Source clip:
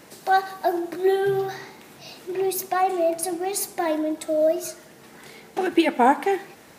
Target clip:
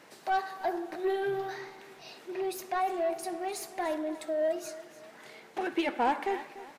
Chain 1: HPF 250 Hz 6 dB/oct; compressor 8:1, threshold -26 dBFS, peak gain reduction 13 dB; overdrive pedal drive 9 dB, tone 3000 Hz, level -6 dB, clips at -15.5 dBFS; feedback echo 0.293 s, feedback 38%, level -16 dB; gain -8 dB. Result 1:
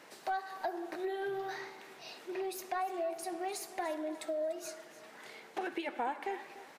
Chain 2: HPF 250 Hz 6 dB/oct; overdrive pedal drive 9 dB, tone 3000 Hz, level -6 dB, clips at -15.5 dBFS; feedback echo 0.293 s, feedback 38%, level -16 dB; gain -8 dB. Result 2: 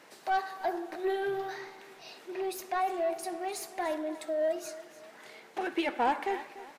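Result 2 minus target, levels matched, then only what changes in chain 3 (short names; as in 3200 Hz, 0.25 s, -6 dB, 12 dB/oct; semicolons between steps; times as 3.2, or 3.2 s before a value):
125 Hz band -4.0 dB
change: HPF 68 Hz 6 dB/oct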